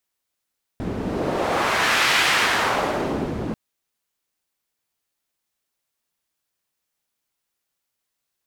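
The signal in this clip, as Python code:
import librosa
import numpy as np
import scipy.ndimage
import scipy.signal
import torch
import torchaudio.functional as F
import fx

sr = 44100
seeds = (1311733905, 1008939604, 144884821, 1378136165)

y = fx.wind(sr, seeds[0], length_s=2.74, low_hz=220.0, high_hz=2200.0, q=1.0, gusts=1, swing_db=8)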